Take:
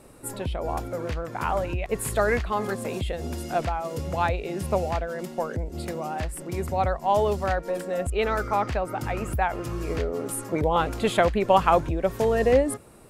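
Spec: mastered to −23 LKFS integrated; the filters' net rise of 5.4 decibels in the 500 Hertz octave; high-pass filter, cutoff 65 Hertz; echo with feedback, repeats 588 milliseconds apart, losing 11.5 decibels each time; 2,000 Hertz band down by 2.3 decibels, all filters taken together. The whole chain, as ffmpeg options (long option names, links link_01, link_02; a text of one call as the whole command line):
ffmpeg -i in.wav -af "highpass=65,equalizer=frequency=500:width_type=o:gain=6.5,equalizer=frequency=2000:width_type=o:gain=-3.5,aecho=1:1:588|1176|1764:0.266|0.0718|0.0194,volume=-0.5dB" out.wav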